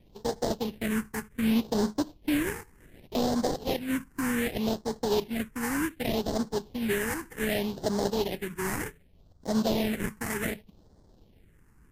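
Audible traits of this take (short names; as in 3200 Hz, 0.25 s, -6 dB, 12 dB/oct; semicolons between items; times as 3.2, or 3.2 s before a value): aliases and images of a low sample rate 1300 Hz, jitter 20%; phasing stages 4, 0.66 Hz, lowest notch 590–2500 Hz; Vorbis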